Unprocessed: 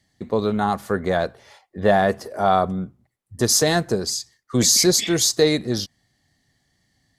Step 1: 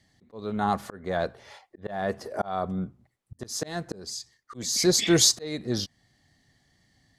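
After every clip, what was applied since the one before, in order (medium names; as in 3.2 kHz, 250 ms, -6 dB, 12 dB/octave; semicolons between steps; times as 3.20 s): treble shelf 10 kHz -9 dB; slow attack 693 ms; trim +2 dB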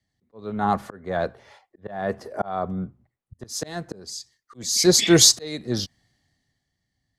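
three bands expanded up and down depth 40%; trim +2 dB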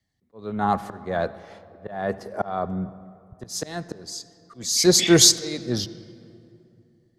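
reverberation RT60 2.7 s, pre-delay 66 ms, DRR 16 dB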